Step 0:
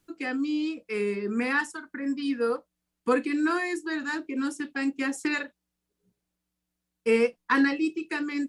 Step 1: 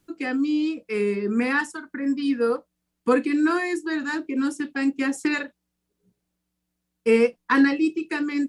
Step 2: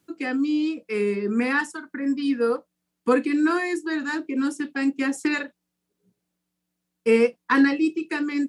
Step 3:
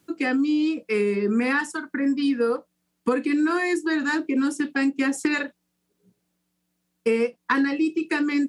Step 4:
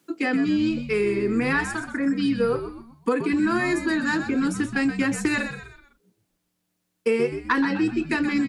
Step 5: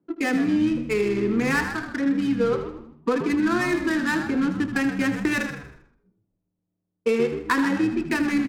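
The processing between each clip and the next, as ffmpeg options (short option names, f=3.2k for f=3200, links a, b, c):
-af "equalizer=f=180:w=0.35:g=3.5,volume=2dB"
-af "highpass=110"
-af "acompressor=threshold=-24dB:ratio=6,volume=5dB"
-filter_complex "[0:a]highpass=190,asplit=2[a][b];[b]asplit=4[c][d][e][f];[c]adelay=126,afreqshift=-79,volume=-9.5dB[g];[d]adelay=252,afreqshift=-158,volume=-17.2dB[h];[e]adelay=378,afreqshift=-237,volume=-25dB[i];[f]adelay=504,afreqshift=-316,volume=-32.7dB[j];[g][h][i][j]amix=inputs=4:normalize=0[k];[a][k]amix=inputs=2:normalize=0"
-af "adynamicsmooth=sensitivity=4.5:basefreq=550,aecho=1:1:79|158|237|316|395:0.282|0.13|0.0596|0.0274|0.0126"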